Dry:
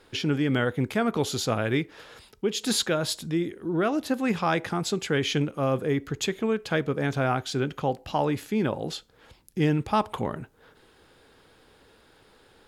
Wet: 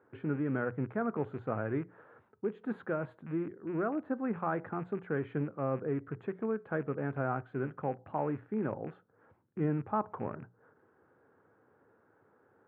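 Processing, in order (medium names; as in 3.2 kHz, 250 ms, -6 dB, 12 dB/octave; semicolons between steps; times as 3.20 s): rattle on loud lows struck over -34 dBFS, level -25 dBFS; elliptic band-pass 100–1500 Hz, stop band 50 dB; hum notches 60/120/180 Hz; trim -7.5 dB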